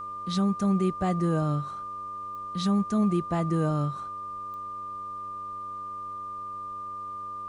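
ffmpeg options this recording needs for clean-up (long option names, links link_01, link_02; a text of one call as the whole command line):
ffmpeg -i in.wav -af "adeclick=threshold=4,bandreject=frequency=97.6:width_type=h:width=4,bandreject=frequency=195.2:width_type=h:width=4,bandreject=frequency=292.8:width_type=h:width=4,bandreject=frequency=390.4:width_type=h:width=4,bandreject=frequency=488:width_type=h:width=4,bandreject=frequency=585.6:width_type=h:width=4,bandreject=frequency=1200:width=30,agate=range=-21dB:threshold=-29dB" out.wav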